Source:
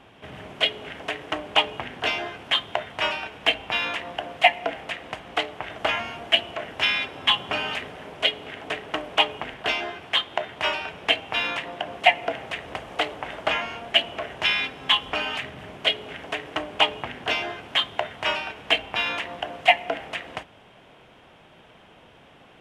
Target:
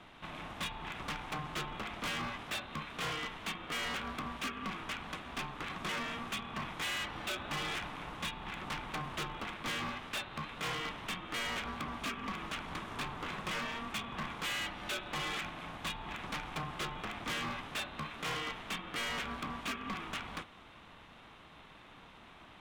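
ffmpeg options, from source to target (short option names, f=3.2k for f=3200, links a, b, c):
-filter_complex "[0:a]highpass=210,acrossover=split=2700[a][b];[a]alimiter=limit=-15.5dB:level=0:latency=1:release=198[c];[b]acompressor=threshold=-39dB:ratio=6[d];[c][d]amix=inputs=2:normalize=0,asoftclip=type=tanh:threshold=-24.5dB,aeval=exprs='val(0)*sin(2*PI*460*n/s)':c=same,asoftclip=type=hard:threshold=-33.5dB"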